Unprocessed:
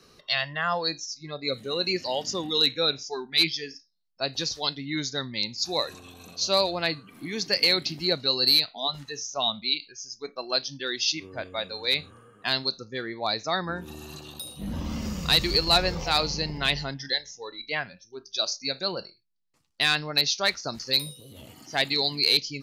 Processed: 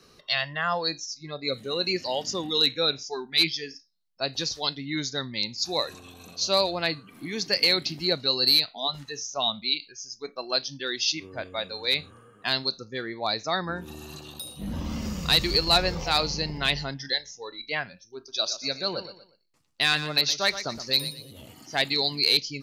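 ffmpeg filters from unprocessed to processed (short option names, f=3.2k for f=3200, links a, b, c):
-filter_complex "[0:a]asettb=1/sr,asplit=3[a][b][c];[a]atrim=end=18.164[d];[b]atrim=start=18.16:end=21.31,asetpts=PTS-STARTPTS,afade=t=in:d=0.004:c=qsin,afade=t=out:st=3.146:d=0.004:c=qsin,aecho=1:1:119|238|357:0.251|0.0829|0.0274,atrim=end_sample=138915[e];[c]atrim=start=21.306[f];[d][e]acrossfade=d=0.004:c1=hsin:c2=qsin[g];[g][f]acrossfade=d=0.004:c1=qsin:c2=hsin"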